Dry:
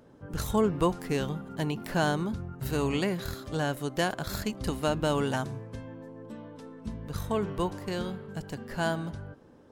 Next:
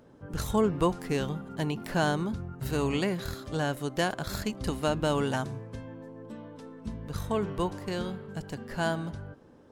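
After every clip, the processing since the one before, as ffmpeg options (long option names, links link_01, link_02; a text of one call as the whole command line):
ffmpeg -i in.wav -af "equalizer=frequency=15000:width_type=o:width=0.41:gain=-5" out.wav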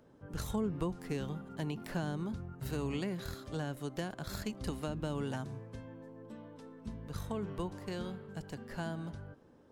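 ffmpeg -i in.wav -filter_complex "[0:a]acrossover=split=320[link_01][link_02];[link_02]acompressor=threshold=-33dB:ratio=6[link_03];[link_01][link_03]amix=inputs=2:normalize=0,volume=-6dB" out.wav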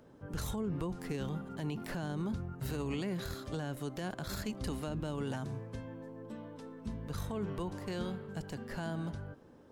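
ffmpeg -i in.wav -af "alimiter=level_in=8dB:limit=-24dB:level=0:latency=1:release=20,volume=-8dB,volume=3.5dB" out.wav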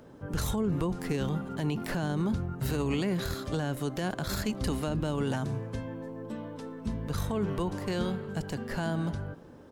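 ffmpeg -i in.wav -filter_complex "[0:a]asplit=2[link_01][link_02];[link_02]adelay=309,volume=-25dB,highshelf=frequency=4000:gain=-6.95[link_03];[link_01][link_03]amix=inputs=2:normalize=0,volume=7dB" out.wav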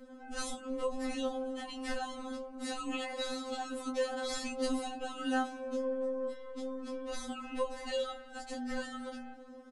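ffmpeg -i in.wav -filter_complex "[0:a]asplit=2[link_01][link_02];[link_02]adelay=17,volume=-4.5dB[link_03];[link_01][link_03]amix=inputs=2:normalize=0,aresample=22050,aresample=44100,afftfilt=real='re*3.46*eq(mod(b,12),0)':imag='im*3.46*eq(mod(b,12),0)':win_size=2048:overlap=0.75" out.wav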